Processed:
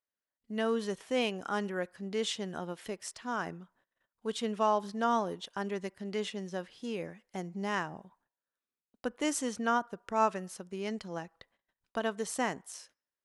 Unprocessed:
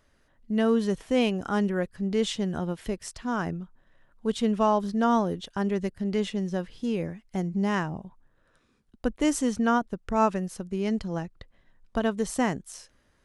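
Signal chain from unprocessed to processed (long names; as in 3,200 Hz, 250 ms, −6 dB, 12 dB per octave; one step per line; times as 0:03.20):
noise gate −55 dBFS, range −25 dB
high-pass filter 540 Hz 6 dB per octave
on a send: convolution reverb RT60 0.65 s, pre-delay 3 ms, DRR 23.5 dB
on the sum: level −2.5 dB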